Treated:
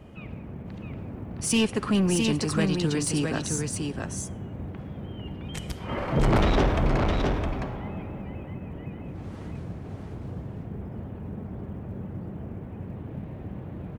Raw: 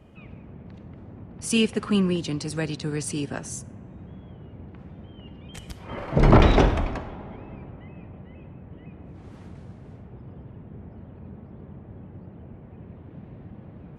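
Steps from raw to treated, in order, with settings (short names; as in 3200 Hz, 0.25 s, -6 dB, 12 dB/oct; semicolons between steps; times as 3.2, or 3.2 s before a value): in parallel at -3 dB: compressor, threshold -30 dBFS, peak gain reduction 19 dB; on the sum: short-mantissa float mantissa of 6-bit; soft clip -17 dBFS, distortion -8 dB; echo 0.663 s -4 dB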